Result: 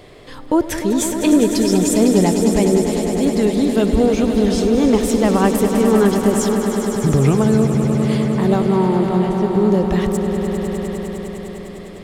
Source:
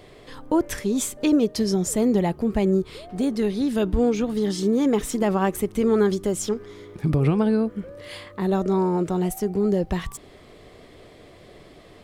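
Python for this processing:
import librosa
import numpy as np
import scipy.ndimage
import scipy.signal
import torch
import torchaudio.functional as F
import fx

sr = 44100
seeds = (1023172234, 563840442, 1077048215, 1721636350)

y = fx.cheby1_lowpass(x, sr, hz=2900.0, order=2, at=(8.6, 9.54))
y = fx.echo_swell(y, sr, ms=101, loudest=5, wet_db=-10.5)
y = y * 10.0 ** (5.0 / 20.0)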